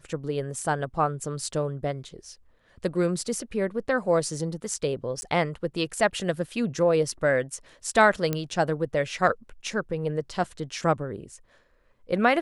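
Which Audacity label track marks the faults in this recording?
5.210000	5.220000	drop-out 10 ms
8.330000	8.330000	click −12 dBFS

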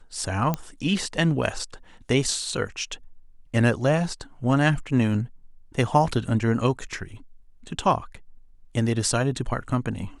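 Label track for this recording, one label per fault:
0.540000	0.540000	click −12 dBFS

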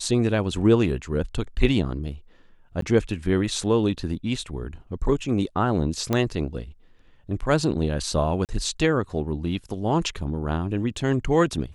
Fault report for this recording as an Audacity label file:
2.810000	2.820000	drop-out 13 ms
6.130000	6.130000	click −10 dBFS
8.450000	8.490000	drop-out 38 ms

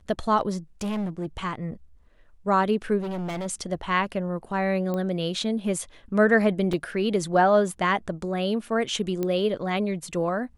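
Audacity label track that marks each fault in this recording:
0.810000	1.260000	clipping −25.5 dBFS
3.000000	3.470000	clipping −28 dBFS
4.940000	4.940000	click −18 dBFS
6.730000	6.730000	drop-out 4.4 ms
9.230000	9.230000	click −15 dBFS

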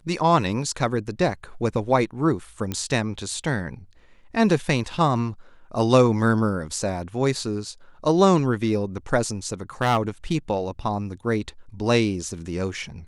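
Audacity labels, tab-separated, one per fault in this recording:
2.720000	2.720000	click −14 dBFS
9.820000	9.980000	clipping −14 dBFS

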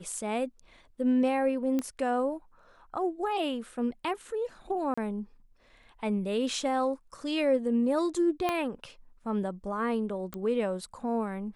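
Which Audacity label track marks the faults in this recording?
1.790000	1.790000	click −18 dBFS
4.940000	4.970000	drop-out 35 ms
8.490000	8.490000	click −15 dBFS
10.340000	10.340000	click −22 dBFS

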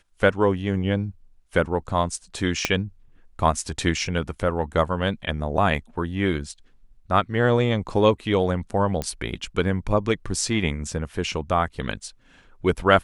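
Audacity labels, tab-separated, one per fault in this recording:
2.650000	2.650000	click −5 dBFS
9.020000	9.020000	click −13 dBFS

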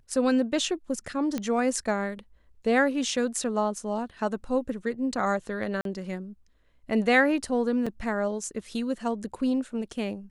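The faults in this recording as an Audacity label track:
1.380000	1.380000	click −16 dBFS
5.810000	5.850000	drop-out 42 ms
7.860000	7.870000	drop-out 5.6 ms

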